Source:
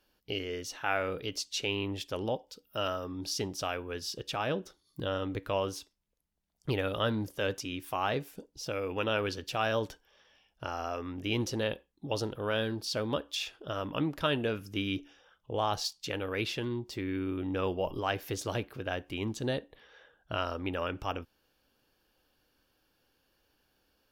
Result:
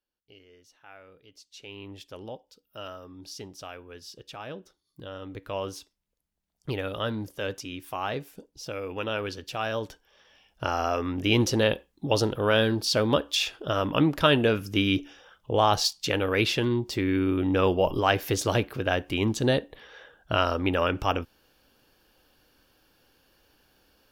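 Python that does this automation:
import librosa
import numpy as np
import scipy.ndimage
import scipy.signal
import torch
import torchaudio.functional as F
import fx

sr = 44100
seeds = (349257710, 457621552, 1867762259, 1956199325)

y = fx.gain(x, sr, db=fx.line((1.27, -19.0), (1.91, -7.0), (5.12, -7.0), (5.67, 0.0), (9.84, 0.0), (10.66, 9.0)))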